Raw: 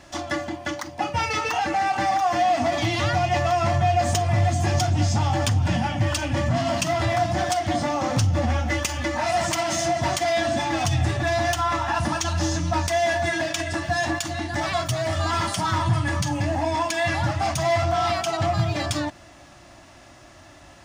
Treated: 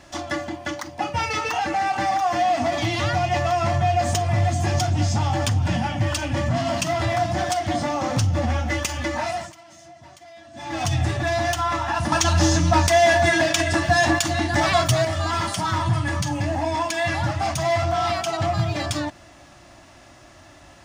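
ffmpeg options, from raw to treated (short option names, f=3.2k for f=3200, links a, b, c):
-filter_complex "[0:a]asplit=5[a][b][c][d][e];[a]atrim=end=9.53,asetpts=PTS-STARTPTS,afade=t=out:st=9.18:d=0.35:silence=0.0749894[f];[b]atrim=start=9.53:end=10.53,asetpts=PTS-STARTPTS,volume=-22.5dB[g];[c]atrim=start=10.53:end=12.122,asetpts=PTS-STARTPTS,afade=t=in:d=0.35:silence=0.0749894[h];[d]atrim=start=12.118:end=15.052,asetpts=PTS-STARTPTS,volume=6dB[i];[e]atrim=start=15.048[j];[f][g][h]concat=n=3:v=0:a=1[k];[k][i]acrossfade=d=0.004:c1=hsin:c2=hsin[l];[l][j]acrossfade=d=0.004:c1=hsin:c2=hsin"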